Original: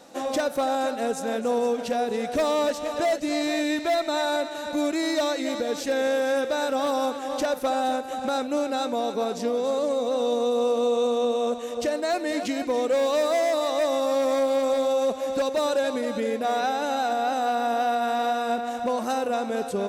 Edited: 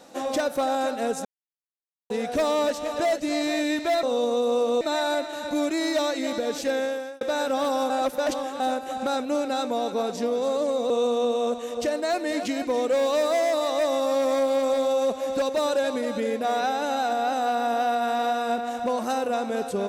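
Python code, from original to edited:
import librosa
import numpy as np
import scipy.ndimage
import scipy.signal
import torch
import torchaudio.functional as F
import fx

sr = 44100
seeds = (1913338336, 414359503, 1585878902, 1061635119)

y = fx.edit(x, sr, fx.silence(start_s=1.25, length_s=0.85),
    fx.fade_out_span(start_s=5.92, length_s=0.51),
    fx.reverse_span(start_s=7.12, length_s=0.7),
    fx.move(start_s=10.12, length_s=0.78, to_s=4.03), tone=tone)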